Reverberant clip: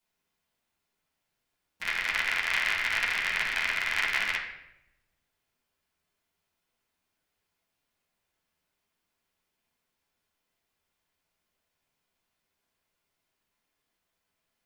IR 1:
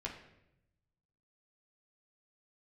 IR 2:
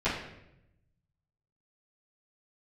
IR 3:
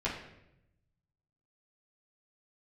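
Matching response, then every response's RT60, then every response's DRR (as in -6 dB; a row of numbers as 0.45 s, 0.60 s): 3; 0.85 s, 0.85 s, 0.85 s; -2.5 dB, -16.5 dB, -8.0 dB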